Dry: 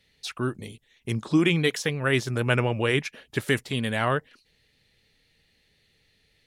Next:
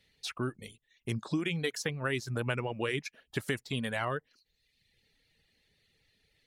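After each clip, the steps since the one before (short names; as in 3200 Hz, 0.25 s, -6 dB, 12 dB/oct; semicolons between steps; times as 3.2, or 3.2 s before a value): reverb removal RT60 0.86 s; compressor 5:1, threshold -25 dBFS, peak gain reduction 9 dB; gain -3.5 dB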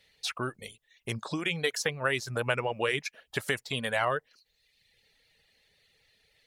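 resonant low shelf 410 Hz -6.5 dB, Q 1.5; gain +5 dB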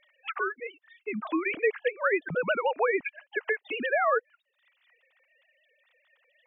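sine-wave speech; in parallel at +2 dB: compressor, threshold -37 dBFS, peak gain reduction 14 dB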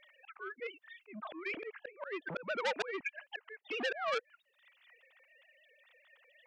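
auto swell 0.504 s; core saturation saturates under 2600 Hz; gain +2.5 dB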